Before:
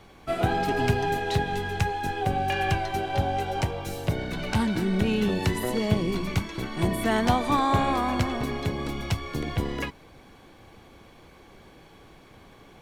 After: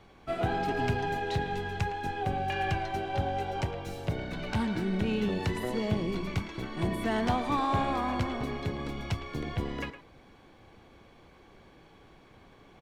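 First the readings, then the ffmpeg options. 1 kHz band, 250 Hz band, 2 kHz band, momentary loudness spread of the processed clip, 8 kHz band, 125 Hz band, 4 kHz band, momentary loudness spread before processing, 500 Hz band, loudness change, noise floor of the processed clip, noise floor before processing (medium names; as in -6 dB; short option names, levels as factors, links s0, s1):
-5.0 dB, -5.0 dB, -5.0 dB, 7 LU, -10.0 dB, -5.0 dB, -6.5 dB, 7 LU, -5.0 dB, -5.0 dB, -57 dBFS, -52 dBFS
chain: -filter_complex "[0:a]equalizer=f=13000:t=o:w=1.4:g=-9,asplit=2[s0][s1];[s1]aeval=exprs='0.119*(abs(mod(val(0)/0.119+3,4)-2)-1)':c=same,volume=0.299[s2];[s0][s2]amix=inputs=2:normalize=0,asplit=2[s3][s4];[s4]adelay=110,highpass=300,lowpass=3400,asoftclip=type=hard:threshold=0.126,volume=0.282[s5];[s3][s5]amix=inputs=2:normalize=0,volume=0.447"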